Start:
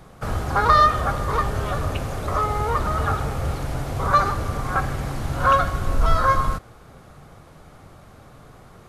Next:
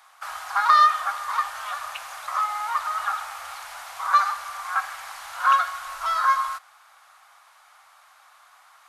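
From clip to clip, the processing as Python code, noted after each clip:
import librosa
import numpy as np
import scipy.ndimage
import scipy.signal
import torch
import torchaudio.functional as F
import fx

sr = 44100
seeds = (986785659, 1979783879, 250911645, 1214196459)

y = scipy.signal.sosfilt(scipy.signal.cheby2(4, 40, 440.0, 'highpass', fs=sr, output='sos'), x)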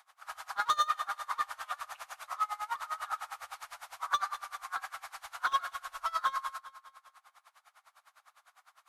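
y = np.clip(x, -10.0 ** (-18.0 / 20.0), 10.0 ** (-18.0 / 20.0))
y = fx.echo_feedback(y, sr, ms=200, feedback_pct=52, wet_db=-15.0)
y = y * 10.0 ** (-24 * (0.5 - 0.5 * np.cos(2.0 * np.pi * 9.9 * np.arange(len(y)) / sr)) / 20.0)
y = y * 10.0 ** (-3.5 / 20.0)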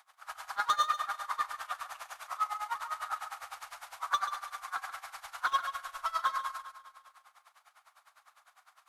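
y = x + 10.0 ** (-11.0 / 20.0) * np.pad(x, (int(135 * sr / 1000.0), 0))[:len(x)]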